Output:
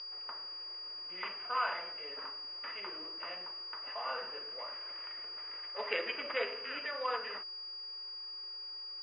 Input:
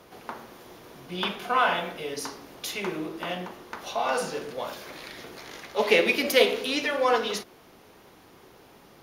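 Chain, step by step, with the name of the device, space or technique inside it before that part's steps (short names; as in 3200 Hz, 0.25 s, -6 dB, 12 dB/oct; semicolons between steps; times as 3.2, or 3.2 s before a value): toy sound module (decimation joined by straight lines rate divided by 8×; pulse-width modulation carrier 4800 Hz; speaker cabinet 670–4800 Hz, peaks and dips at 770 Hz -8 dB, 1200 Hz +4 dB, 1900 Hz +4 dB, 2800 Hz +9 dB, 4600 Hz -5 dB); gain -8.5 dB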